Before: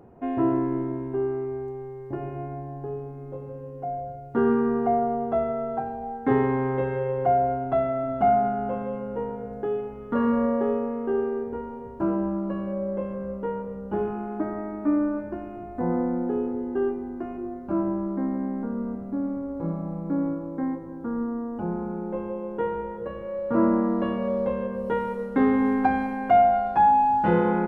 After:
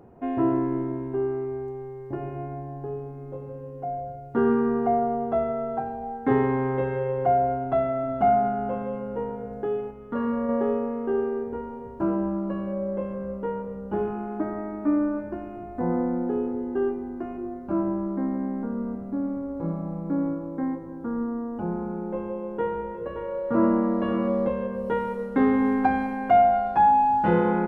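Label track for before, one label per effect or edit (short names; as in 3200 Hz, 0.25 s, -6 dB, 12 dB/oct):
9.910000	10.490000	gain -4 dB
22.370000	24.480000	echo 0.573 s -9 dB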